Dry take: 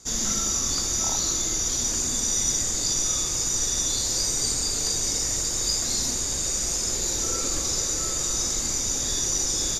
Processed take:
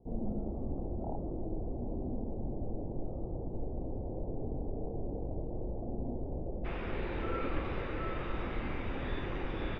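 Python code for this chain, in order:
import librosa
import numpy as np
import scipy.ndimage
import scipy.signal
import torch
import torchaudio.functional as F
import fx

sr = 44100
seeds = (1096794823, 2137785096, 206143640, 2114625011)

y = fx.steep_lowpass(x, sr, hz=fx.steps((0.0, 770.0), (6.64, 2800.0)), slope=48)
y = y * librosa.db_to_amplitude(-1.5)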